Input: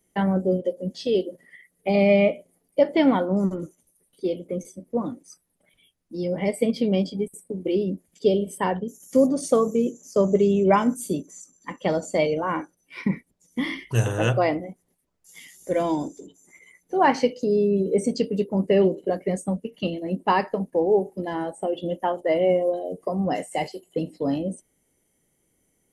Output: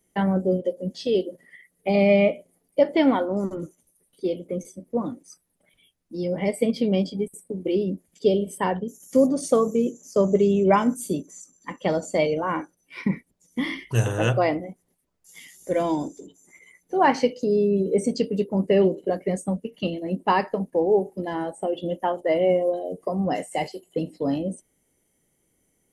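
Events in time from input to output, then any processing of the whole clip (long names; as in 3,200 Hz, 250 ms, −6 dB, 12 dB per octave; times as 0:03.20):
0:02.97–0:03.57: parametric band 180 Hz −13 dB 0.21 octaves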